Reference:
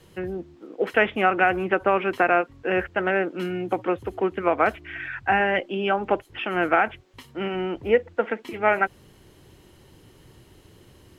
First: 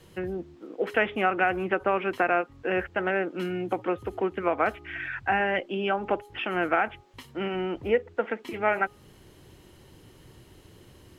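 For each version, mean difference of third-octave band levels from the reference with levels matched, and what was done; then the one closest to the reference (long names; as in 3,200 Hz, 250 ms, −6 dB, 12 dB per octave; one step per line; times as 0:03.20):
1.5 dB: hum removal 413.7 Hz, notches 3
in parallel at −1 dB: downward compressor, threshold −29 dBFS, peak gain reduction 15 dB
on the sum: level −6 dB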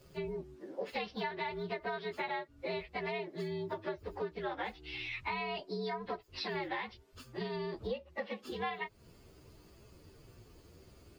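7.5 dB: partials spread apart or drawn together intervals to 118%
downward compressor 6 to 1, threshold −33 dBFS, peak gain reduction 16 dB
level −2.5 dB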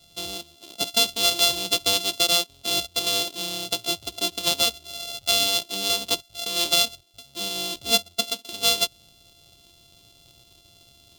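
14.5 dB: samples sorted by size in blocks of 64 samples
high shelf with overshoot 2,500 Hz +11 dB, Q 3
level −8 dB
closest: first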